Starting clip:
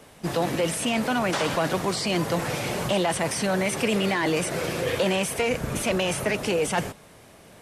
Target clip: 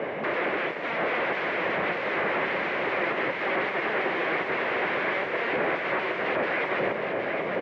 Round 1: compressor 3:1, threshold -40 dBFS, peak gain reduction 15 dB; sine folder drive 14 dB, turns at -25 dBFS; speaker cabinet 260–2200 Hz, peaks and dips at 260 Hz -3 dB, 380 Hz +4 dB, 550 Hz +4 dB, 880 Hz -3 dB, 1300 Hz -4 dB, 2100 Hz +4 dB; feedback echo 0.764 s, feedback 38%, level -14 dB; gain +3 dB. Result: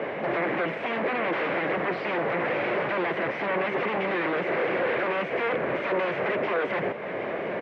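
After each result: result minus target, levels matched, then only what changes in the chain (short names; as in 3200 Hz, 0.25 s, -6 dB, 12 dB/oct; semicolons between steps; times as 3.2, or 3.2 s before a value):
echo-to-direct -8.5 dB; compressor: peak gain reduction +5.5 dB
change: feedback echo 0.764 s, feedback 38%, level -5.5 dB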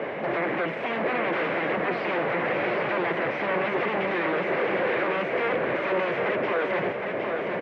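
compressor: peak gain reduction +5.5 dB
change: compressor 3:1, threshold -32 dBFS, peak gain reduction 9.5 dB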